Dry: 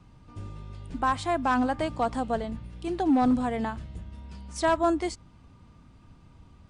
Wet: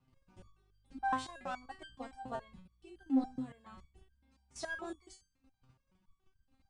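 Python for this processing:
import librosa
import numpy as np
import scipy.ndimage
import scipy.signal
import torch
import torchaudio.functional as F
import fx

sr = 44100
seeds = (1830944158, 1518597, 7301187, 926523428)

y = fx.level_steps(x, sr, step_db=13)
y = fx.resonator_held(y, sr, hz=7.1, low_hz=130.0, high_hz=1600.0)
y = y * 10.0 ** (4.5 / 20.0)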